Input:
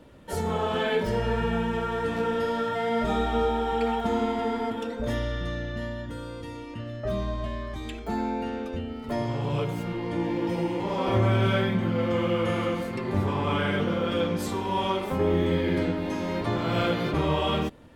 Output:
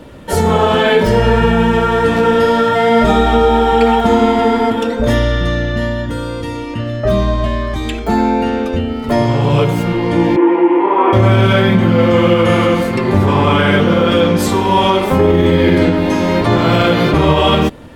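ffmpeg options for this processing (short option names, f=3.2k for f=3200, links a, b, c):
-filter_complex "[0:a]asettb=1/sr,asplit=3[a][b][c];[a]atrim=end=10.364[d];[b]atrim=start=10.36:end=11.13,asetpts=PTS-STARTPTS,afade=t=in:d=0.004:c=qsin,afade=t=out:st=0.766:d=0.004:c=qsin,highpass=f=330:w=0.5412,highpass=f=330:w=1.3066,equalizer=f=350:t=q:w=4:g=8,equalizer=f=560:t=q:w=4:g=-10,equalizer=f=1k:t=q:w=4:g=6,lowpass=f=2.3k:w=0.5412,lowpass=f=2.3k:w=1.3066[e];[c]atrim=start=11.126[f];[d][e]acrossfade=d=0.004:c1=hsin:c2=qsin[g];[g][f]acrossfade=d=0.004:c1=qsin:c2=hsin,alimiter=level_in=16.5dB:limit=-1dB:release=50:level=0:latency=1,volume=-1dB"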